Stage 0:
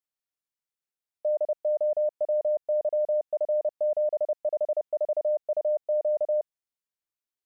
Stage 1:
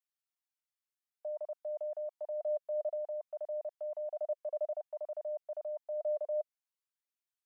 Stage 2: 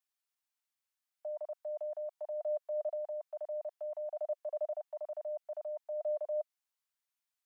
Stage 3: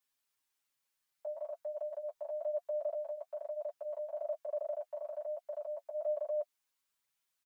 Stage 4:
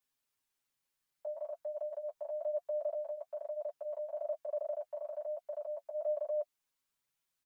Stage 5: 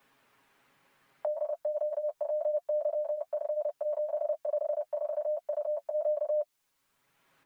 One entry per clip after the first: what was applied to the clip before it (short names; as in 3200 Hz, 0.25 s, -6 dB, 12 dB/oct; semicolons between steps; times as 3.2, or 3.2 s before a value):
HPF 720 Hz 24 dB/oct; flange 0.56 Hz, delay 0.3 ms, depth 1.6 ms, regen +60%
HPF 630 Hz 24 dB/oct; gain +3 dB
comb 7.3 ms, depth 81%; flange 1.1 Hz, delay 4.6 ms, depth 6.4 ms, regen -27%; notch 710 Hz, Q 12; gain +7 dB
low shelf 440 Hz +6.5 dB; gain -2 dB
three-band squash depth 70%; gain +6.5 dB